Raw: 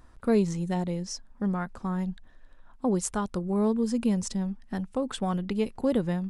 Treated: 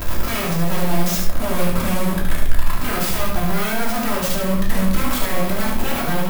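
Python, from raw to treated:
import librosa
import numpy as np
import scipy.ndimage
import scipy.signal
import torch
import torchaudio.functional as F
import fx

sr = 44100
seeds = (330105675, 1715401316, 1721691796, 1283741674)

p1 = fx.delta_mod(x, sr, bps=64000, step_db=-25.5)
p2 = fx.high_shelf(p1, sr, hz=4300.0, db=8.5)
p3 = fx.rider(p2, sr, range_db=4, speed_s=0.5)
p4 = p2 + (p3 * librosa.db_to_amplitude(2.5))
p5 = (np.mod(10.0 ** (18.5 / 20.0) * p4 + 1.0, 2.0) - 1.0) / 10.0 ** (18.5 / 20.0)
p6 = p5 + fx.echo_single(p5, sr, ms=73, db=-4.5, dry=0)
p7 = fx.room_shoebox(p6, sr, seeds[0], volume_m3=420.0, walls='furnished', distance_m=2.9)
y = p7 * librosa.db_to_amplitude(-4.5)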